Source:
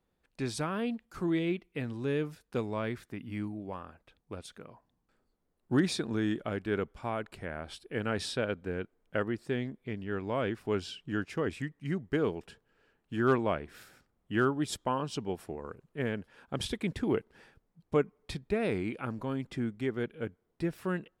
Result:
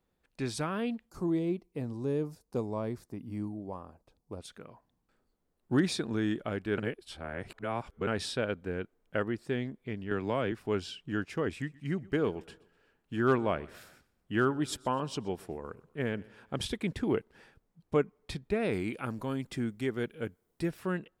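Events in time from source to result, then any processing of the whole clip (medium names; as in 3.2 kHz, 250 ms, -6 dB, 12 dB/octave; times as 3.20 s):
1.09–4.41 s: high-order bell 2.2 kHz -12.5 dB
6.78–8.07 s: reverse
10.11–10.52 s: three bands compressed up and down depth 70%
11.49–16.63 s: feedback delay 125 ms, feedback 47%, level -23 dB
18.73–20.71 s: treble shelf 5.8 kHz +11.5 dB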